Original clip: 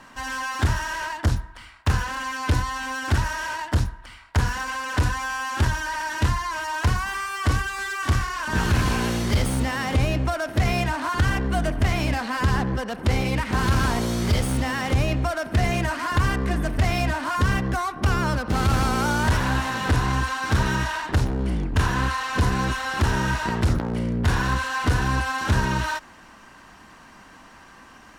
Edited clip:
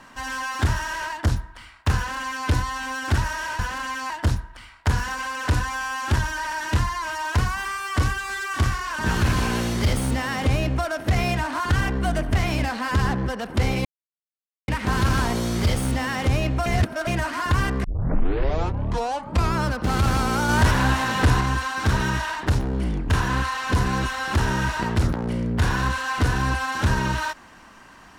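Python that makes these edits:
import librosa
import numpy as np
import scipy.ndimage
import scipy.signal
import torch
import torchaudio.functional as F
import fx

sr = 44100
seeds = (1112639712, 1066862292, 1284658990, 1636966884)

y = fx.edit(x, sr, fx.duplicate(start_s=1.96, length_s=0.51, to_s=3.59),
    fx.insert_silence(at_s=13.34, length_s=0.83),
    fx.reverse_span(start_s=15.32, length_s=0.41),
    fx.tape_start(start_s=16.5, length_s=1.79),
    fx.clip_gain(start_s=19.15, length_s=0.92, db=3.0), tone=tone)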